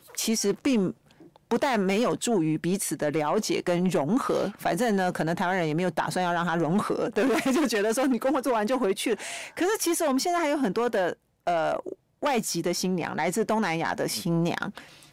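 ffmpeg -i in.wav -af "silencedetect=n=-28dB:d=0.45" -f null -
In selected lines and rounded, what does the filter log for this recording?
silence_start: 0.90
silence_end: 1.51 | silence_duration: 0.61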